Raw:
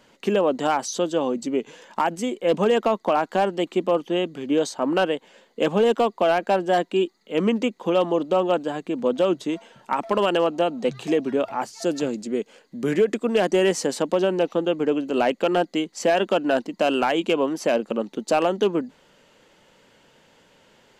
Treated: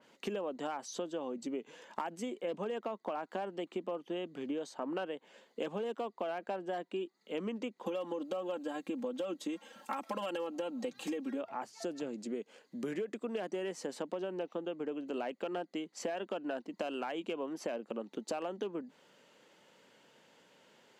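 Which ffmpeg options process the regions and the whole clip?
-filter_complex "[0:a]asettb=1/sr,asplit=3[a][b][c];[a]atrim=end=7.864[d];[b]atrim=start=7.86:end=11.41,asetpts=PTS-STARTPTS,afade=t=in:d=0.004:c=qsin,afade=t=out:st=3.546:d=0.004:c=qsin,aemphasis=mode=production:type=50kf,aecho=1:1:3.7:0.97,atrim=end_sample=156555,acompressor=threshold=-17dB:ratio=2.5:attack=3.2:release=140:knee=1:detection=peak[e];[c]atrim=start=11.406[f];[d][e]acrossfade=d=0.004:c1=hsin:c2=qsin[g];[g][f]acrossfade=d=0.004:c1=qsin:c2=hsin,highpass=170,acompressor=threshold=-28dB:ratio=6,adynamicequalizer=threshold=0.00282:dfrequency=3400:dqfactor=0.7:tfrequency=3400:tqfactor=0.7:attack=5:release=100:ratio=0.375:range=3:mode=cutabove:tftype=highshelf,volume=-7dB"

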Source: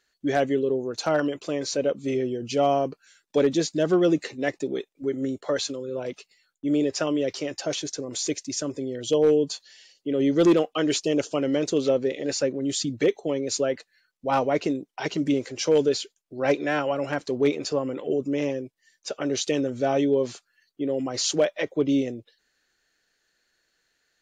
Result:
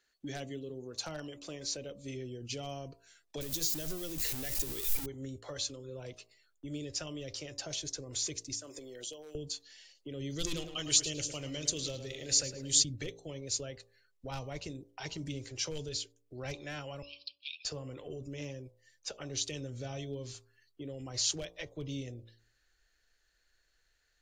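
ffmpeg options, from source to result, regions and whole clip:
-filter_complex "[0:a]asettb=1/sr,asplit=3[a][b][c];[a]atrim=end=3.414[d];[b]atrim=start=3.41:end=5.06,asetpts=PTS-STARTPTS,afade=t=in:d=0.004:c=qsin,afade=t=out:st=1.646:d=0.004:c=qsin,aeval=exprs='val(0)+0.5*0.0355*sgn(val(0))':c=same,aemphasis=mode=production:type=50fm,acompressor=threshold=-24dB:ratio=2.5:attack=3.2:release=140:knee=1:detection=peak[e];[c]atrim=start=5.056[f];[d][e]acrossfade=d=0.004:c1=hsin:c2=qsin[g];[g][f]acrossfade=d=0.004:c1=qsin:c2=hsin,asettb=1/sr,asplit=3[h][i][j];[h]atrim=end=8.554[k];[i]atrim=start=8.55:end=9.35,asetpts=PTS-STARTPTS,afade=t=in:d=0.004:c=qsin,afade=t=out:st=0.796:d=0.004:c=qsin,highpass=290,aemphasis=mode=production:type=75kf,acompressor=threshold=-34dB:ratio=6:attack=3.2:release=140:knee=1:detection=peak[l];[j]atrim=start=9.346[m];[k][l]acrossfade=d=0.004:c1=hsin:c2=qsin[n];[n][m]acrossfade=d=0.004:c1=qsin:c2=hsin,asettb=1/sr,asplit=3[o][p][q];[o]atrim=end=10.304[r];[p]atrim=start=10.3:end=12.84,asetpts=PTS-STARTPTS,afade=t=in:d=0.004:c=qsin,afade=t=out:st=2.536:d=0.004:c=qsin,highshelf=f=3.1k:g=11,bandreject=f=5.3k:w=28,asplit=2[s][t];[t]adelay=107,lowpass=f=3.5k:p=1,volume=-10dB,asplit=2[u][v];[v]adelay=107,lowpass=f=3.5k:p=1,volume=0.48,asplit=2[w][x];[x]adelay=107,lowpass=f=3.5k:p=1,volume=0.48,asplit=2[y][z];[z]adelay=107,lowpass=f=3.5k:p=1,volume=0.48,asplit=2[aa][ab];[ab]adelay=107,lowpass=f=3.5k:p=1,volume=0.48[ac];[s][u][w][y][aa][ac]amix=inputs=6:normalize=0,atrim=end_sample=112014[ad];[q]atrim=start=12.836[ae];[r][ad]acrossfade=d=0.004:c1=hsin:c2=qsin[af];[af][ae]acrossfade=d=0.004:c1=qsin:c2=hsin,asettb=1/sr,asplit=3[ag][ah][ai];[ag]atrim=end=17.024[aj];[ah]atrim=start=17.02:end=17.65,asetpts=PTS-STARTPTS,afade=t=in:d=0.004:c=qsin,afade=t=out:st=0.626:d=0.004:c=qsin,asuperpass=centerf=3600:order=20:qfactor=1.3,highshelf=f=3.5k:g=7.5[ak];[ai]atrim=start=17.646[al];[aj][ak]acrossfade=d=0.004:c1=hsin:c2=qsin[am];[am][al]acrossfade=d=0.004:c1=qsin:c2=hsin,asubboost=boost=11.5:cutoff=61,acrossover=split=170|3000[an][ao][ap];[ao]acompressor=threshold=-40dB:ratio=4[aq];[an][aq][ap]amix=inputs=3:normalize=0,bandreject=f=56.95:t=h:w=4,bandreject=f=113.9:t=h:w=4,bandreject=f=170.85:t=h:w=4,bandreject=f=227.8:t=h:w=4,bandreject=f=284.75:t=h:w=4,bandreject=f=341.7:t=h:w=4,bandreject=f=398.65:t=h:w=4,bandreject=f=455.6:t=h:w=4,bandreject=f=512.55:t=h:w=4,bandreject=f=569.5:t=h:w=4,bandreject=f=626.45:t=h:w=4,bandreject=f=683.4:t=h:w=4,bandreject=f=740.35:t=h:w=4,bandreject=f=797.3:t=h:w=4,bandreject=f=854.25:t=h:w=4,bandreject=f=911.2:t=h:w=4,bandreject=f=968.15:t=h:w=4,bandreject=f=1.0251k:t=h:w=4,bandreject=f=1.08205k:t=h:w=4,bandreject=f=1.139k:t=h:w=4,bandreject=f=1.19595k:t=h:w=4,volume=-4.5dB"

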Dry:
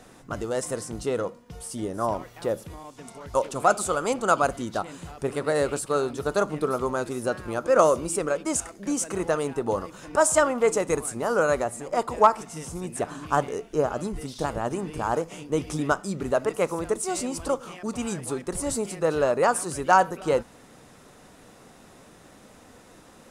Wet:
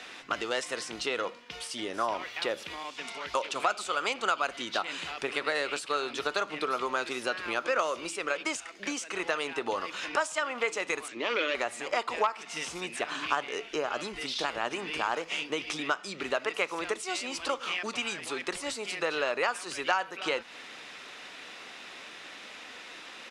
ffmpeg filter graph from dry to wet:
-filter_complex "[0:a]asettb=1/sr,asplit=3[a][b][c];[a]atrim=end=11.084[d];[b]atrim=start=11.08:end=11.55,asetpts=PTS-STARTPTS,afade=t=in:d=0.004:c=qsin,afade=t=out:st=0.466:d=0.004:c=qsin,asoftclip=type=hard:threshold=-20.5dB,highpass=120,equalizer=f=150:t=q:w=4:g=-9,equalizer=f=310:t=q:w=4:g=9,equalizer=f=760:t=q:w=4:g=-10,equalizer=f=1.5k:t=q:w=4:g=-7,equalizer=f=4.9k:t=q:w=4:g=-8,lowpass=f=5.5k:w=0.5412,lowpass=f=5.5k:w=1.3066[e];[c]atrim=start=11.546[f];[d][e]acrossfade=d=0.004:c1=hsin:c2=qsin[g];[g][f]acrossfade=d=0.004:c1=qsin:c2=hsin,firequalizer=gain_entry='entry(170,0);entry(490,-7);entry(2400,11);entry(13000,3)':delay=0.05:min_phase=1,acompressor=threshold=-31dB:ratio=6,acrossover=split=330 4600:gain=0.0631 1 0.126[h][i][j];[h][i][j]amix=inputs=3:normalize=0,volume=6.5dB"

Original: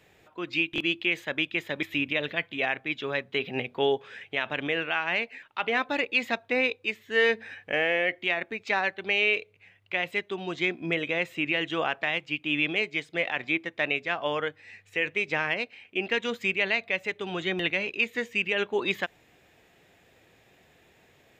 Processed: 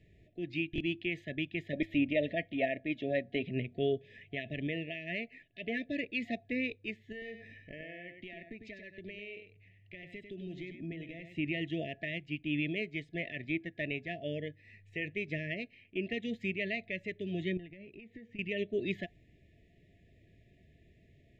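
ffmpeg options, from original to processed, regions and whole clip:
-filter_complex "[0:a]asettb=1/sr,asplit=3[a][b][c];[a]atrim=end=1.734[d];[b]atrim=start=1.73:end=3.43,asetpts=PTS-STARTPTS,afade=t=in:d=0.004:c=qsin,afade=t=out:st=1.696:d=0.004:c=qsin,equalizer=f=700:t=o:w=1:g=14,aecho=1:1:3.7:0.4,atrim=end_sample=74970[e];[c]atrim=start=3.426[f];[d][e]acrossfade=d=0.004:c1=hsin:c2=qsin[g];[g][f]acrossfade=d=0.004:c1=qsin:c2=hsin,asettb=1/sr,asplit=3[h][i][j];[h]atrim=end=7.124[k];[i]atrim=start=7.12:end=11.38,asetpts=PTS-STARTPTS,afade=t=in:d=0.004:c=qsin,afade=t=out:st=4.256:d=0.004:c=qsin,acompressor=threshold=-39dB:ratio=2.5:attack=3.2:release=140:knee=1:detection=peak,aecho=1:1:98:0.422,atrim=end_sample=187866[l];[j]atrim=start=11.376[m];[k][l]acrossfade=d=0.004:c1=hsin:c2=qsin[n];[n][m]acrossfade=d=0.004:c1=qsin:c2=hsin,asettb=1/sr,asplit=3[o][p][q];[o]atrim=end=17.574[r];[p]atrim=start=17.57:end=18.39,asetpts=PTS-STARTPTS,afade=t=in:d=0.004:c=qsin,afade=t=out:st=0.816:d=0.004:c=qsin,lowpass=f=1.5k:p=1,acompressor=threshold=-40dB:ratio=8:attack=3.2:release=140:knee=1:detection=peak[s];[q]atrim=start=18.386[t];[r][s]acrossfade=d=0.004:c1=hsin:c2=qsin[u];[u][t]acrossfade=d=0.004:c1=qsin:c2=hsin,aemphasis=mode=reproduction:type=riaa,afftfilt=real='re*(1-between(b*sr/4096,710,1700))':imag='im*(1-between(b*sr/4096,710,1700))':win_size=4096:overlap=0.75,equalizer=f=510:t=o:w=0.31:g=-9.5,volume=-7.5dB"

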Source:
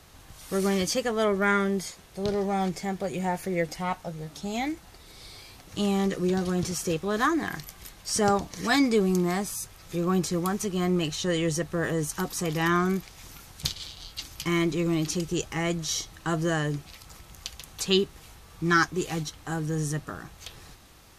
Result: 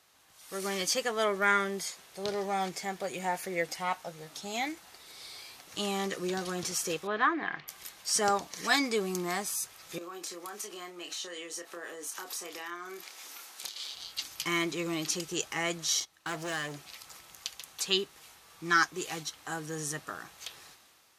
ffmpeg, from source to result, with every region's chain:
-filter_complex "[0:a]asettb=1/sr,asplit=3[a][b][c];[a]atrim=end=7.074[d];[b]atrim=start=7.07:end=7.68,asetpts=PTS-STARTPTS,afade=t=in:d=0.004:c=qsin,afade=t=out:st=0.606:d=0.004:c=qsin,lowpass=f=3.1k:w=0.5412,lowpass=f=3.1k:w=1.3066,equalizer=f=61:t=o:w=0.81:g=-6.5[e];[c]atrim=start=7.676[f];[d][e]acrossfade=d=0.004:c1=hsin:c2=qsin[g];[g][f]acrossfade=d=0.004:c1=qsin:c2=hsin,asettb=1/sr,asplit=3[h][i][j];[h]atrim=end=9.984[k];[i]atrim=start=9.98:end=13.95,asetpts=PTS-STARTPTS,afade=t=in:d=0.004:c=qsin,afade=t=out:st=3.966:d=0.004:c=qsin,highpass=f=270:w=0.5412,highpass=f=270:w=1.3066,acompressor=threshold=-35dB:ratio=12:attack=3.2:release=140:knee=1:detection=peak,asplit=2[l][m];[m]adelay=29,volume=-6.5dB[n];[l][n]amix=inputs=2:normalize=0,atrim=end_sample=175077[o];[j]atrim=start=13.946[p];[k][o]acrossfade=d=0.004:c1=hsin:c2=qsin[q];[q][p]acrossfade=d=0.004:c1=qsin:c2=hsin,asettb=1/sr,asplit=3[r][s][t];[r]atrim=end=16.004[u];[s]atrim=start=16:end=16.76,asetpts=PTS-STARTPTS,afade=t=in:d=0.004:c=qsin,afade=t=out:st=0.756:d=0.004:c=qsin,agate=range=-14dB:threshold=-40dB:ratio=16:release=100:detection=peak,volume=28dB,asoftclip=hard,volume=-28dB[v];[t]atrim=start=16.756[w];[u][v]acrossfade=d=0.004:c1=hsin:c2=qsin[x];[x][w]acrossfade=d=0.004:c1=qsin:c2=hsin,highpass=f=820:p=1,dynaudnorm=f=140:g=9:m=9.5dB,volume=-8.5dB"

